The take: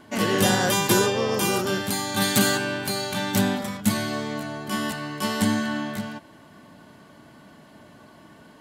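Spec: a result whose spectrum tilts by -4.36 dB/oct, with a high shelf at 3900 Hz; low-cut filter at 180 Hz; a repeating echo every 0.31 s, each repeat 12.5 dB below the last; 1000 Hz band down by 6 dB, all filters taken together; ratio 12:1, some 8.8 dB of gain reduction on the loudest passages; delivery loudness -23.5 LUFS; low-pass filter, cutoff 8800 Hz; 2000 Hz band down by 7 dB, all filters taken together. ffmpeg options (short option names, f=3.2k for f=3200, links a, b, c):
-af "highpass=180,lowpass=8.8k,equalizer=f=1k:t=o:g=-6,equalizer=f=2k:t=o:g=-5.5,highshelf=f=3.9k:g=-7.5,acompressor=threshold=-27dB:ratio=12,aecho=1:1:310|620|930:0.237|0.0569|0.0137,volume=8.5dB"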